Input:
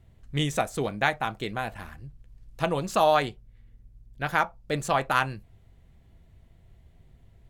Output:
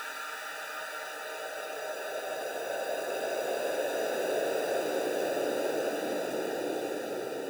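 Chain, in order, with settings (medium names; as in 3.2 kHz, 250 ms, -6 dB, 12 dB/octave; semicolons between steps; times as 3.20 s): peaking EQ 550 Hz +6 dB 0.77 oct; sample-and-hold 41×; high-pass sweep 2.6 kHz -> 120 Hz, 3.90–5.99 s; Paulstretch 7.6×, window 1.00 s, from 4.38 s; trim -8.5 dB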